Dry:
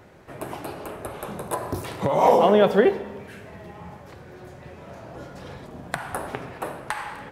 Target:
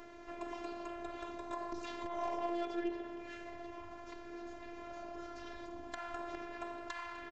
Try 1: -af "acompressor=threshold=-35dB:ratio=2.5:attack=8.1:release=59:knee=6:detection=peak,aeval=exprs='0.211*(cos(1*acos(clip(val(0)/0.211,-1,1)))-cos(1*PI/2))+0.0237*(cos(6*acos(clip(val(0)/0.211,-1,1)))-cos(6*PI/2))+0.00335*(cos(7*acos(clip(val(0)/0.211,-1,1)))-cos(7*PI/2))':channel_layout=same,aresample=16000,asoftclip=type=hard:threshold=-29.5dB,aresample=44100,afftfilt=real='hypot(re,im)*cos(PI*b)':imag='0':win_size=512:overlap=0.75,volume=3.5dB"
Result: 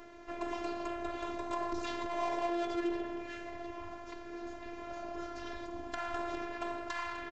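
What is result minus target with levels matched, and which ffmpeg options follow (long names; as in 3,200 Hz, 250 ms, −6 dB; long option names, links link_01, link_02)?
downward compressor: peak gain reduction −6.5 dB
-af "acompressor=threshold=-46dB:ratio=2.5:attack=8.1:release=59:knee=6:detection=peak,aeval=exprs='0.211*(cos(1*acos(clip(val(0)/0.211,-1,1)))-cos(1*PI/2))+0.0237*(cos(6*acos(clip(val(0)/0.211,-1,1)))-cos(6*PI/2))+0.00335*(cos(7*acos(clip(val(0)/0.211,-1,1)))-cos(7*PI/2))':channel_layout=same,aresample=16000,asoftclip=type=hard:threshold=-29.5dB,aresample=44100,afftfilt=real='hypot(re,im)*cos(PI*b)':imag='0':win_size=512:overlap=0.75,volume=3.5dB"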